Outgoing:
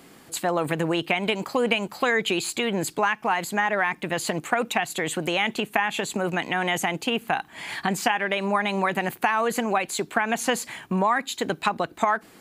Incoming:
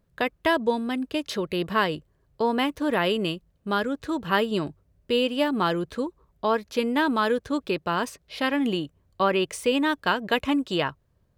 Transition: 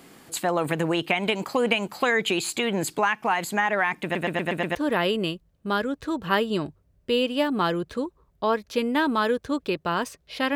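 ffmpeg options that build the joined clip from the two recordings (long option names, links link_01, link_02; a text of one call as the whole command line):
ffmpeg -i cue0.wav -i cue1.wav -filter_complex "[0:a]apad=whole_dur=10.55,atrim=end=10.55,asplit=6[link_01][link_02][link_03][link_04][link_05][link_06];[link_01]atrim=end=4.152[link_07];[link_02]atrim=start=4.028:end=4.152[link_08];[link_03]atrim=start=4.028:end=4.152[link_09];[link_04]atrim=start=4.028:end=4.152[link_10];[link_05]atrim=start=4.028:end=4.152[link_11];[link_06]atrim=start=4.028:end=4.152[link_12];[1:a]atrim=start=2.758:end=8.56[link_13];[link_07][link_08]acrossfade=duration=0.004:curve1=hsin:curve2=hsin[link_14];[link_14][link_09]acrossfade=duration=0.004:curve1=hsin:curve2=hsin[link_15];[link_15][link_10]acrossfade=duration=0.004:curve1=hsin:curve2=hsin[link_16];[link_16][link_11]acrossfade=duration=0.004:curve1=hsin:curve2=hsin[link_17];[link_17][link_12]acrossfade=duration=0.004:curve1=hsin:curve2=hsin[link_18];[link_18][link_13]acrossfade=duration=0.004:curve1=hsin:curve2=hsin" out.wav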